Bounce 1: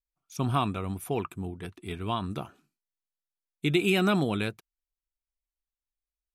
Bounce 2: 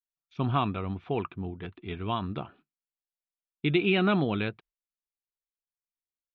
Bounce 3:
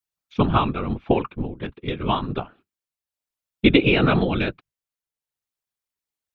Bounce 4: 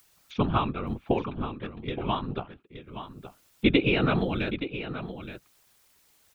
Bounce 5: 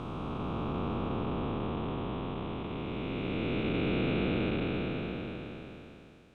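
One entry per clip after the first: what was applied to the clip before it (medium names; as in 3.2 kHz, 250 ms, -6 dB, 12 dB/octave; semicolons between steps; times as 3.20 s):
gate -56 dBFS, range -20 dB; steep low-pass 3.7 kHz 36 dB/octave
transient shaper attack +6 dB, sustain -3 dB; whisper effect; trim +6 dB
upward compressor, threshold -32 dBFS; delay 872 ms -11 dB; trim -6 dB
spectral blur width 1460 ms; distance through air 83 m; trim +2.5 dB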